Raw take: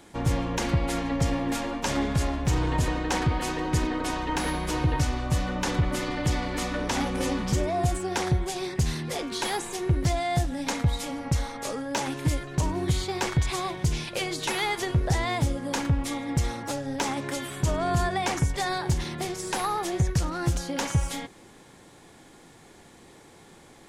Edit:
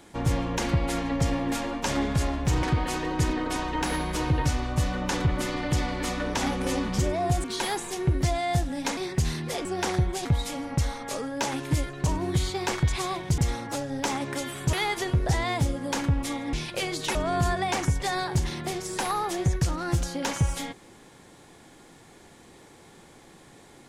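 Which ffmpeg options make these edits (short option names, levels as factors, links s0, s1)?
-filter_complex "[0:a]asplit=10[s0][s1][s2][s3][s4][s5][s6][s7][s8][s9];[s0]atrim=end=2.632[s10];[s1]atrim=start=3.168:end=7.982[s11];[s2]atrim=start=9.258:end=10.792[s12];[s3]atrim=start=8.578:end=9.262[s13];[s4]atrim=start=7.978:end=8.582[s14];[s5]atrim=start=10.788:end=13.922[s15];[s6]atrim=start=16.338:end=17.692[s16];[s7]atrim=start=14.538:end=16.342[s17];[s8]atrim=start=13.918:end=14.542[s18];[s9]atrim=start=17.688[s19];[s10][s11]acrossfade=d=0.004:c1=hsin:c2=hsin[s20];[s20][s12]acrossfade=d=0.004:c1=hsin:c2=hsin[s21];[s21][s13]acrossfade=d=0.004:c1=hsin:c2=hsin[s22];[s22][s14]acrossfade=d=0.004:c1=hsin:c2=hsin[s23];[s23][s15]acrossfade=d=0.004:c1=hsin:c2=hsin[s24];[s24][s16]acrossfade=d=0.004:c1=hsin:c2=hsin[s25];[s25][s17]acrossfade=d=0.004:c1=hsin:c2=hsin[s26];[s26][s18]acrossfade=d=0.004:c1=hsin:c2=hsin[s27];[s27][s19]acrossfade=d=0.004:c1=hsin:c2=hsin"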